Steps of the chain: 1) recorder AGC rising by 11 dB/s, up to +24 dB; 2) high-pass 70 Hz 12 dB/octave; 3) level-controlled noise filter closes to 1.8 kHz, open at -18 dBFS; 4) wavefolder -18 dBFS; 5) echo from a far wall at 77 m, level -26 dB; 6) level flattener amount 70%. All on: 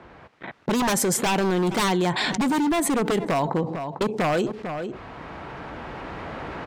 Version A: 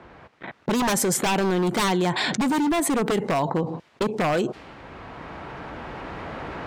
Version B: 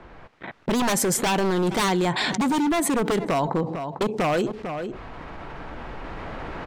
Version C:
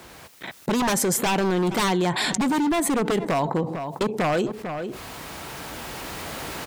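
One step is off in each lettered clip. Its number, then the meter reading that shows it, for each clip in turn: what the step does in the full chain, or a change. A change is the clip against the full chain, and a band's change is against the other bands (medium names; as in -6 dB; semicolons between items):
5, momentary loudness spread change +2 LU; 2, momentary loudness spread change +1 LU; 3, crest factor change +2.5 dB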